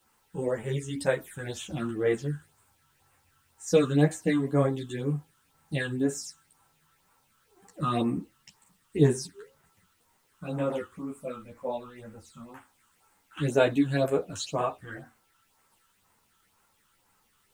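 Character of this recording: phasing stages 8, 2 Hz, lowest notch 620–4900 Hz; a quantiser's noise floor 12-bit, dither triangular; a shimmering, thickened sound

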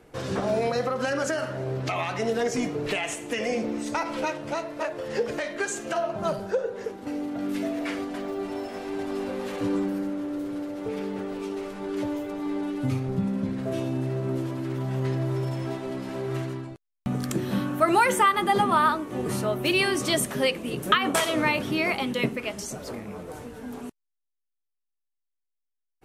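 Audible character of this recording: noise floor -81 dBFS; spectral tilt -5.0 dB/octave

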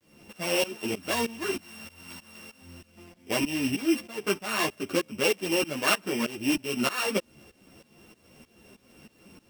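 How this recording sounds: a buzz of ramps at a fixed pitch in blocks of 16 samples; tremolo saw up 3.2 Hz, depth 95%; a quantiser's noise floor 12-bit, dither none; a shimmering, thickened sound

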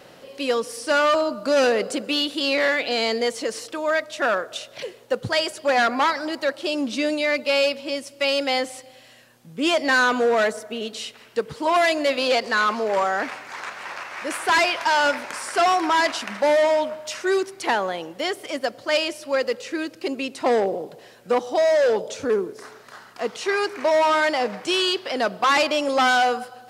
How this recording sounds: noise floor -48 dBFS; spectral tilt -2.5 dB/octave

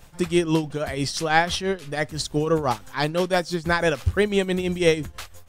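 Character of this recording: tremolo triangle 6 Hz, depth 75%

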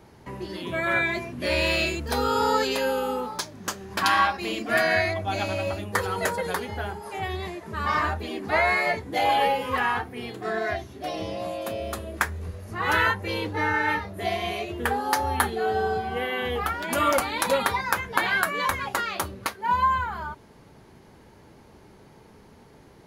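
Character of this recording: noise floor -52 dBFS; spectral tilt -3.5 dB/octave

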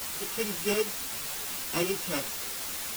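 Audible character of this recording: a buzz of ramps at a fixed pitch in blocks of 16 samples; tremolo saw up 11 Hz, depth 55%; a quantiser's noise floor 6-bit, dither triangular; a shimmering, thickened sound

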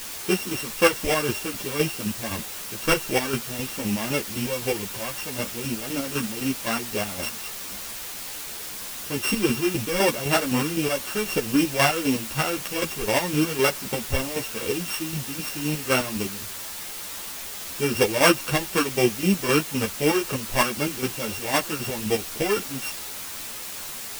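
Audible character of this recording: a buzz of ramps at a fixed pitch in blocks of 16 samples; chopped level 3.9 Hz, depth 60%, duty 40%; a quantiser's noise floor 6-bit, dither triangular; a shimmering, thickened sound

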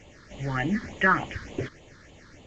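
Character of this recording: phasing stages 6, 3.4 Hz, lowest notch 700–1500 Hz; G.722

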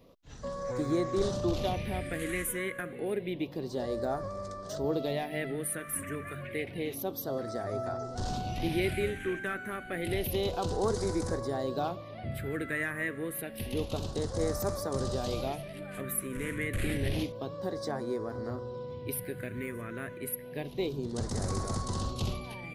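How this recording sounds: phasing stages 4, 0.29 Hz, lowest notch 780–2700 Hz

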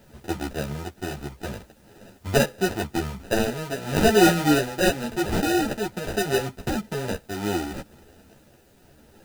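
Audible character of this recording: aliases and images of a low sample rate 1.1 kHz, jitter 0%; tremolo triangle 0.78 Hz, depth 50%; a quantiser's noise floor 12-bit, dither triangular; a shimmering, thickened sound

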